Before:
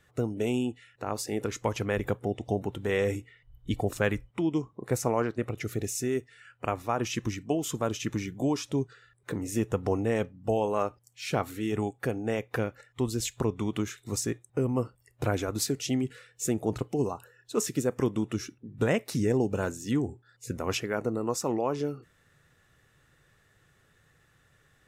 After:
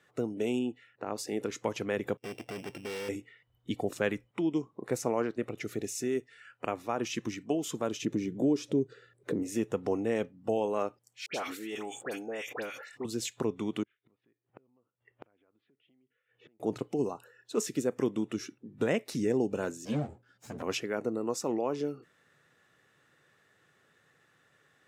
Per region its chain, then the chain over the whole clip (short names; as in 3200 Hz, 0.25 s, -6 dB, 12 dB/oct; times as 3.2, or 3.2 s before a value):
0.59–1.18 high shelf 5800 Hz -9.5 dB + mismatched tape noise reduction decoder only
2.17–3.09 sample sorter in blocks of 16 samples + expander -44 dBFS + overloaded stage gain 33.5 dB
8.02–9.43 resonant low shelf 660 Hz +9 dB, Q 1.5 + compressor 1.5:1, threshold -33 dBFS
11.26–13.05 HPF 740 Hz 6 dB/oct + dispersion highs, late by 85 ms, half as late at 1800 Hz + sustainer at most 63 dB/s
13.83–16.6 Chebyshev low-pass 3300 Hz, order 5 + compressor 10:1, threshold -36 dBFS + flipped gate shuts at -43 dBFS, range -28 dB
19.85–20.62 minimum comb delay 1.3 ms + low shelf 310 Hz +11.5 dB + ensemble effect
whole clip: dynamic EQ 1100 Hz, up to -5 dB, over -42 dBFS, Q 0.71; HPF 210 Hz 12 dB/oct; high shelf 7400 Hz -8.5 dB